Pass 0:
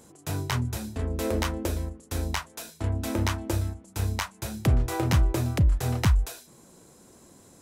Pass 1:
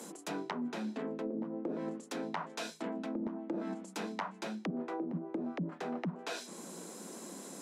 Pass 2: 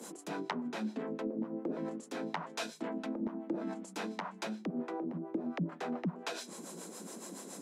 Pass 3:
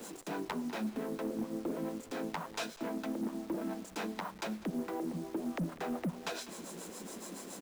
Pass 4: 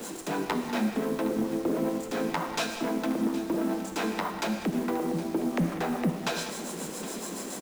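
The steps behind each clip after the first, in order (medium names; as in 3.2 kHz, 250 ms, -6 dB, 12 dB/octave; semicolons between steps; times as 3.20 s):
steep high-pass 170 Hz 96 dB/octave; low-pass that closes with the level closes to 300 Hz, closed at -25 dBFS; reverse; compression 6:1, threshold -43 dBFS, peak gain reduction 16.5 dB; reverse; trim +7.5 dB
harmonic tremolo 7.1 Hz, depth 70%, crossover 470 Hz; trim +3.5 dB
send-on-delta sampling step -49 dBFS; delay 199 ms -19.5 dB; overload inside the chain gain 31 dB; trim +1 dB
delay 765 ms -15.5 dB; gated-style reverb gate 230 ms flat, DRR 5.5 dB; trim +8 dB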